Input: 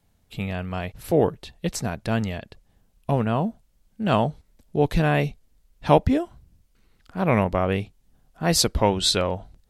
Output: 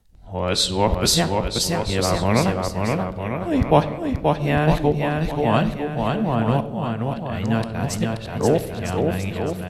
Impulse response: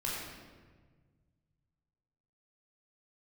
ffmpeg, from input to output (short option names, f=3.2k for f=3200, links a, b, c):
-filter_complex "[0:a]areverse,aecho=1:1:530|954|1293|1565|1782:0.631|0.398|0.251|0.158|0.1,asplit=2[a][b];[1:a]atrim=start_sample=2205,asetrate=79380,aresample=44100[c];[b][c]afir=irnorm=-1:irlink=0,volume=-10.5dB[d];[a][d]amix=inputs=2:normalize=0"